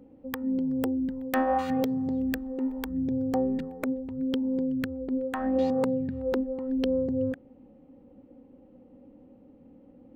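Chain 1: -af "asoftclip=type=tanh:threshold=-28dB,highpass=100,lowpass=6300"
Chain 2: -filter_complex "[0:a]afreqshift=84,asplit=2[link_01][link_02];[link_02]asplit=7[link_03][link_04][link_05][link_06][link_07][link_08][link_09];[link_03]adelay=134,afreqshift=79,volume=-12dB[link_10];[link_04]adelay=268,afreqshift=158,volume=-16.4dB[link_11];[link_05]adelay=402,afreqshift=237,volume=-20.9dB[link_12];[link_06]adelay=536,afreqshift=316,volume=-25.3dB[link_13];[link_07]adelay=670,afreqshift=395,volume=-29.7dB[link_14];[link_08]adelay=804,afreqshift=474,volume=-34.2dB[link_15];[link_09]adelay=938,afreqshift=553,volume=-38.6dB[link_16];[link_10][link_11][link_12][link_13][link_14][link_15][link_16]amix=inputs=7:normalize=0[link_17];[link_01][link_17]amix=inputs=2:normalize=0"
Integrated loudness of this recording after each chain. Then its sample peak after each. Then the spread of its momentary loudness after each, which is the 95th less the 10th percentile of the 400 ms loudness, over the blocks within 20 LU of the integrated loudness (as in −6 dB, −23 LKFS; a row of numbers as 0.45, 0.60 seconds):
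−33.0, −28.5 LKFS; −24.0, −13.0 dBFS; 3, 6 LU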